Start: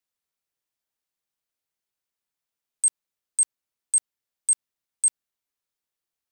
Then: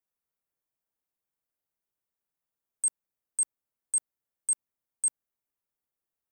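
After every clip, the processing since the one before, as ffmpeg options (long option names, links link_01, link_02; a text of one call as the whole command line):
ffmpeg -i in.wav -af "equalizer=frequency=4200:width_type=o:width=2.1:gain=-12.5" out.wav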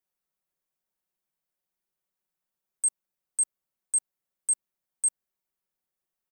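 ffmpeg -i in.wav -af "aecho=1:1:5.4:0.65" out.wav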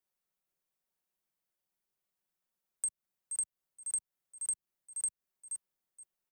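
ffmpeg -i in.wav -filter_complex "[0:a]aecho=1:1:474|948:0.224|0.0448,acrossover=split=140[link_01][link_02];[link_02]acompressor=threshold=-31dB:ratio=6[link_03];[link_01][link_03]amix=inputs=2:normalize=0,volume=-1.5dB" out.wav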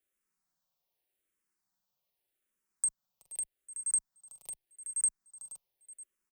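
ffmpeg -i in.wav -filter_complex "[0:a]aecho=1:1:374:0.2,asplit=2[link_01][link_02];[link_02]afreqshift=-0.84[link_03];[link_01][link_03]amix=inputs=2:normalize=1,volume=5.5dB" out.wav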